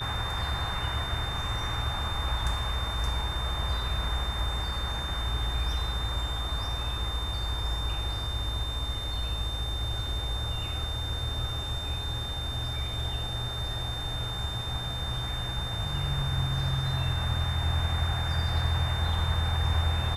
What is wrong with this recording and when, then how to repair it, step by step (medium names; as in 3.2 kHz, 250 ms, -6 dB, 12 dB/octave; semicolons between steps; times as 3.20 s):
whine 3.6 kHz -35 dBFS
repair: band-stop 3.6 kHz, Q 30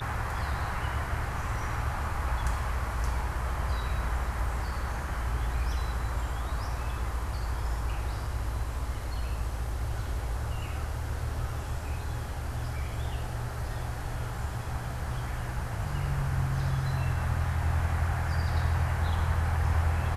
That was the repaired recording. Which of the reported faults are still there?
nothing left